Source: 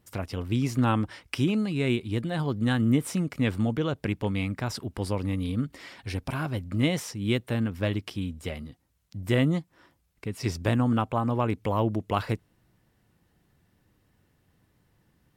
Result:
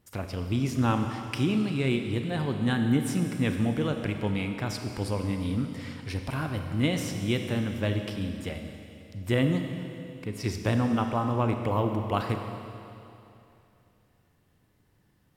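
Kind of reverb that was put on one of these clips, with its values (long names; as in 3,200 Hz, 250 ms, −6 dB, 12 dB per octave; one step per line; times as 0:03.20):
four-comb reverb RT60 2.8 s, combs from 30 ms, DRR 5 dB
level −1.5 dB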